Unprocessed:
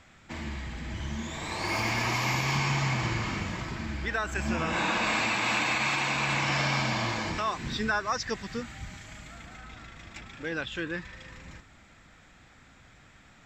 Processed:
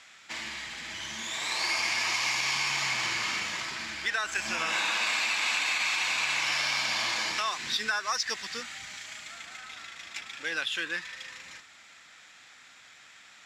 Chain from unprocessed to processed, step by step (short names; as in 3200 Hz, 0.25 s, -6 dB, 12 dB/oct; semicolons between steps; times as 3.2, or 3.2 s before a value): median filter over 5 samples; weighting filter ITU-R 468; compressor, threshold -25 dBFS, peak gain reduction 7 dB